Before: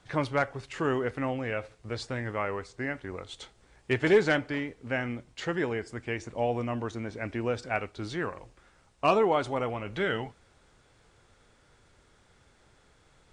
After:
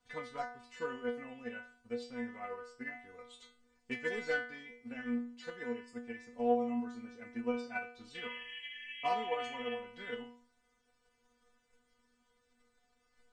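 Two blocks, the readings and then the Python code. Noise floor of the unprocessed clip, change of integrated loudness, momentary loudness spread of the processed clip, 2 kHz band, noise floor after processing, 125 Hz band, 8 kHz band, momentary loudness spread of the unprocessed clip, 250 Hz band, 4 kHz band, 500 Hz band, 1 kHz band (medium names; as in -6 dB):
-63 dBFS, -9.0 dB, 12 LU, -8.0 dB, -76 dBFS, -24.0 dB, under -10 dB, 14 LU, -7.5 dB, -6.5 dB, -10.0 dB, -7.5 dB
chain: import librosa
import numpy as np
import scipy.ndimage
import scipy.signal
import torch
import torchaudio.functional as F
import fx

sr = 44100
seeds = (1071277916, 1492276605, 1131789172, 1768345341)

y = fx.spec_paint(x, sr, seeds[0], shape='noise', start_s=8.14, length_s=1.59, low_hz=1600.0, high_hz=3300.0, level_db=-35.0)
y = fx.stiff_resonator(y, sr, f0_hz=240.0, decay_s=0.51, stiffness=0.002)
y = fx.transient(y, sr, attack_db=6, sustain_db=0)
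y = F.gain(torch.from_numpy(y), 3.5).numpy()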